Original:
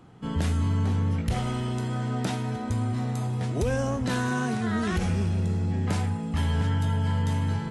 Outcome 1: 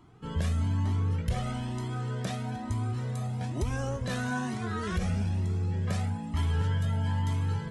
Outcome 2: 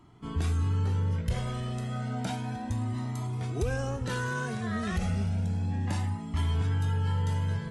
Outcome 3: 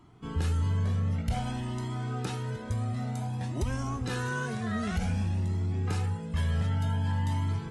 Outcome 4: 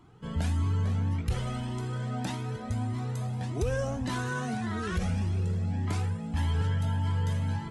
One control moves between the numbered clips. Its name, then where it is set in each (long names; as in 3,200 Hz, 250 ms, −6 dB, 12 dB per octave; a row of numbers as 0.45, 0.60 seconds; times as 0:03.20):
flanger whose copies keep moving one way, speed: 1.1, 0.32, 0.54, 1.7 Hertz